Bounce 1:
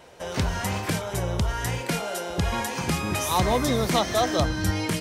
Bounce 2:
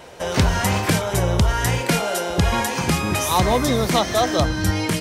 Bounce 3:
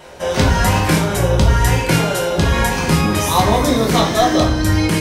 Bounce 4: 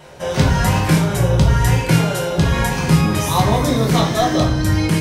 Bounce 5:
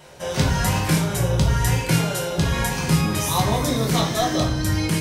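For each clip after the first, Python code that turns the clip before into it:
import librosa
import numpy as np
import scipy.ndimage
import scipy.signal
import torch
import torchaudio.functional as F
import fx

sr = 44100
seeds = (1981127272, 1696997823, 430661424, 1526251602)

y1 = fx.rider(x, sr, range_db=3, speed_s=2.0)
y1 = y1 * librosa.db_to_amplitude(5.5)
y2 = fx.room_shoebox(y1, sr, seeds[0], volume_m3=120.0, walls='mixed', distance_m=1.0)
y3 = fx.peak_eq(y2, sr, hz=140.0, db=10.5, octaves=0.49)
y3 = y3 * librosa.db_to_amplitude(-3.0)
y4 = fx.high_shelf(y3, sr, hz=3400.0, db=6.5)
y4 = y4 * librosa.db_to_amplitude(-5.5)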